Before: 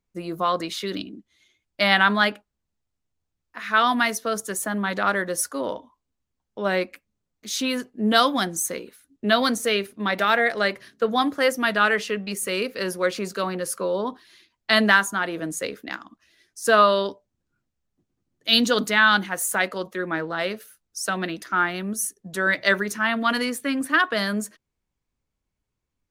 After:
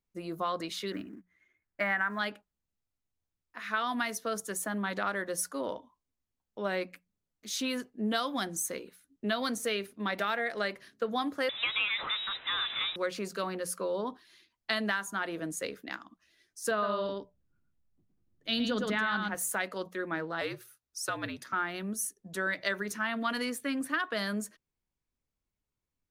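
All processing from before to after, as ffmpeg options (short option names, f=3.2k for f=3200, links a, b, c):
-filter_complex "[0:a]asettb=1/sr,asplit=3[a][b][c];[a]atrim=end=0.924[d];[b]atrim=start=0.92:end=2.19,asetpts=PTS-STARTPTS,afade=t=in:d=0.004:c=qsin,afade=t=out:st=1.266:d=0.004:c=qsin,acrusher=bits=5:mode=log:mix=0:aa=0.000001,highshelf=f=2.6k:t=q:w=3:g=-12[e];[c]atrim=start=2.186[f];[d][e]acrossfade=d=0.004:c1=hsin:c2=qsin[g];[g][f]acrossfade=d=0.004:c1=qsin:c2=hsin,asettb=1/sr,asplit=3[h][i][j];[h]atrim=end=11.494[k];[i]atrim=start=11.49:end=12.96,asetpts=PTS-STARTPTS,afade=t=in:d=0.004:c=qsin,afade=t=out:st=1.466:d=0.004:c=qsin,aeval=exprs='val(0)+0.5*0.0708*sgn(val(0))':c=same,equalizer=f=260:w=2.4:g=-14.5,lowpass=f=3.4k:t=q:w=0.5098,lowpass=f=3.4k:t=q:w=0.6013,lowpass=f=3.4k:t=q:w=0.9,lowpass=f=3.4k:t=q:w=2.563,afreqshift=-4000[l];[j]atrim=start=12.956[m];[k][l]acrossfade=d=0.004:c1=hsin:c2=qsin[n];[n][m]acrossfade=d=0.004:c1=qsin:c2=hsin,asettb=1/sr,asplit=3[o][p][q];[o]atrim=end=16.714[r];[p]atrim=start=16.71:end=19.35,asetpts=PTS-STARTPTS,afade=t=in:d=0.004:c=qsin,afade=t=out:st=2.636:d=0.004:c=qsin,lowpass=f=2.9k:p=1,lowshelf=f=150:g=11.5,aecho=1:1:113:0.562,atrim=end_sample=116424[s];[q]atrim=start=19.346[t];[r][s]acrossfade=d=0.004:c1=hsin:c2=qsin[u];[u][t]acrossfade=d=0.004:c1=qsin:c2=hsin,asettb=1/sr,asplit=3[v][w][x];[v]atrim=end=20.414[y];[w]atrim=start=20.41:end=21.53,asetpts=PTS-STARTPTS,afade=t=in:d=0.004:c=qsin,afade=t=out:st=1.116:d=0.004:c=qsin,bandreject=f=3k:w=23,afreqshift=-69,lowshelf=f=130:g=-10[z];[x]atrim=start=21.526[aa];[y][z]acrossfade=d=0.004:c1=hsin:c2=qsin[ab];[ab][aa]acrossfade=d=0.004:c1=qsin:c2=hsin,bandreject=f=60:t=h:w=6,bandreject=f=120:t=h:w=6,bandreject=f=180:t=h:w=6,acompressor=threshold=-20dB:ratio=6,volume=-7dB"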